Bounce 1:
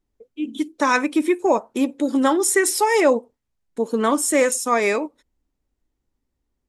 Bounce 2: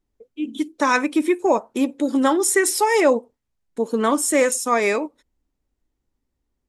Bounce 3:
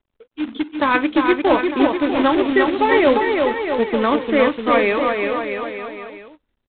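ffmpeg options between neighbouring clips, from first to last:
-af anull
-af "acrusher=bits=2:mode=log:mix=0:aa=0.000001,aecho=1:1:350|647.5|900.4|1115|1298:0.631|0.398|0.251|0.158|0.1,volume=1dB" -ar 8000 -c:a adpcm_g726 -b:a 32k

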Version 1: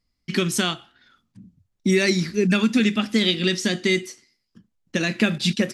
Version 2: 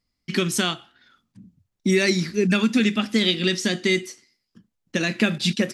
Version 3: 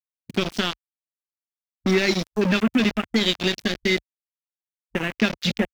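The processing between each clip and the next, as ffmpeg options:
-af "lowshelf=f=74:g=-6.5"
-af "aeval=exprs='val(0)*gte(abs(val(0)),0.0891)':c=same,afwtdn=0.0282"

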